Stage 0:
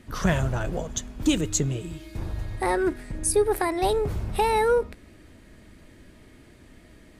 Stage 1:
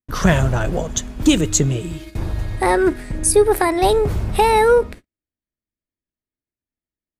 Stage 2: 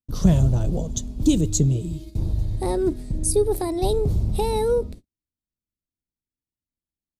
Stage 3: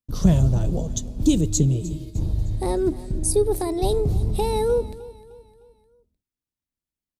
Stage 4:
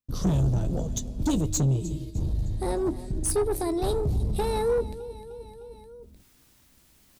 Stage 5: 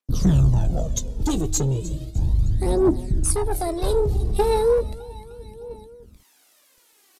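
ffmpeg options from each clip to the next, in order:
-af "agate=range=-52dB:threshold=-41dB:ratio=16:detection=peak,volume=8dB"
-af "firequalizer=gain_entry='entry(160,0);entry(370,-6);entry(1600,-25);entry(3900,-7)':delay=0.05:min_phase=1"
-af "aecho=1:1:305|610|915|1220:0.119|0.0535|0.0241|0.0108"
-filter_complex "[0:a]areverse,acompressor=mode=upward:threshold=-32dB:ratio=2.5,areverse,asoftclip=type=tanh:threshold=-18dB,asplit=2[a][b];[b]adelay=15,volume=-12.5dB[c];[a][c]amix=inputs=2:normalize=0,volume=-1.5dB"
-filter_complex "[0:a]acrossover=split=300|1100|3100[a][b][c][d];[a]aeval=exprs='sgn(val(0))*max(abs(val(0))-0.00141,0)':c=same[e];[e][b][c][d]amix=inputs=4:normalize=0,aphaser=in_gain=1:out_gain=1:delay=2.7:decay=0.57:speed=0.35:type=triangular,aresample=32000,aresample=44100,volume=2.5dB"

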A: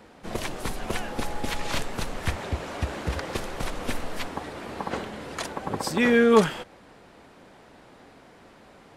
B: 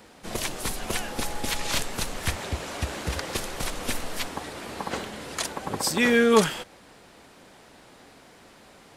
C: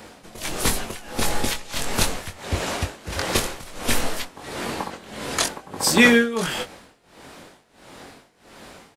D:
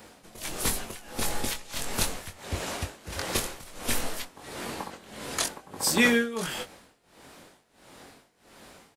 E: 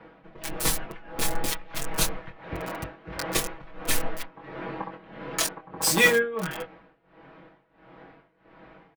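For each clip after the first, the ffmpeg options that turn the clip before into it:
-af "highshelf=f=3.3k:g=11,volume=-1.5dB"
-filter_complex "[0:a]asplit=2[a][b];[b]adelay=22,volume=-5.5dB[c];[a][c]amix=inputs=2:normalize=0,tremolo=f=1.5:d=0.9,volume=8dB"
-af "highshelf=f=8.4k:g=6.5,volume=-7.5dB"
-filter_complex "[0:a]acrossover=split=230|2500[a][b][c];[c]acrusher=bits=4:mix=0:aa=0.000001[d];[a][b][d]amix=inputs=3:normalize=0,aecho=1:1:6.2:0.8"

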